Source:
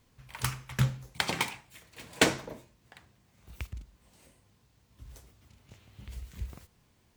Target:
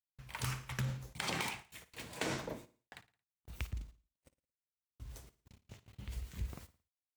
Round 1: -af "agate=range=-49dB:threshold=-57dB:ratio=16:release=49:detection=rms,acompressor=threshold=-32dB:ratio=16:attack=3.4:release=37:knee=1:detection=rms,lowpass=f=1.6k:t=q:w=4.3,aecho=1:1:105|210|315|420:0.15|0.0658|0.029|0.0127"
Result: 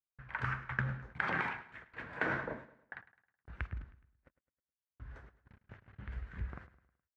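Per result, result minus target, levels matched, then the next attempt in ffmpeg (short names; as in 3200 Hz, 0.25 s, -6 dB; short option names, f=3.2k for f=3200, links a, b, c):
echo 49 ms late; 2000 Hz band +5.0 dB
-af "agate=range=-49dB:threshold=-57dB:ratio=16:release=49:detection=rms,acompressor=threshold=-32dB:ratio=16:attack=3.4:release=37:knee=1:detection=rms,lowpass=f=1.6k:t=q:w=4.3,aecho=1:1:56|112|168|224:0.15|0.0658|0.029|0.0127"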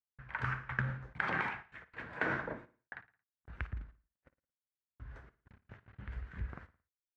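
2000 Hz band +5.0 dB
-af "agate=range=-49dB:threshold=-57dB:ratio=16:release=49:detection=rms,acompressor=threshold=-32dB:ratio=16:attack=3.4:release=37:knee=1:detection=rms,aecho=1:1:56|112|168|224:0.15|0.0658|0.029|0.0127"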